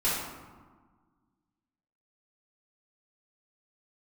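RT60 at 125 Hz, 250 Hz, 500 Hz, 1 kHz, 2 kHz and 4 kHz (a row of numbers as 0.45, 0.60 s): 1.9, 2.1, 1.4, 1.6, 1.1, 0.70 s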